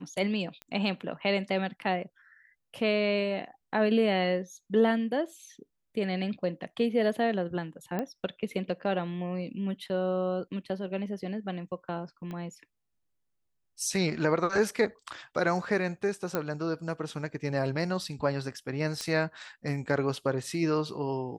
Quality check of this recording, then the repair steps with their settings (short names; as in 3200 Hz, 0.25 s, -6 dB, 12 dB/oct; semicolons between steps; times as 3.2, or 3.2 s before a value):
0.62 pop -26 dBFS
7.99 pop -19 dBFS
12.31 pop -27 dBFS
16.35 pop -14 dBFS
19.01 pop -20 dBFS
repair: de-click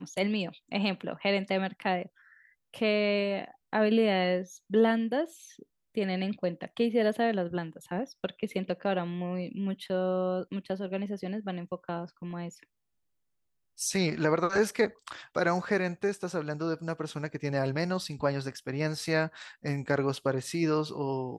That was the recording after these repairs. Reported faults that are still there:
12.31 pop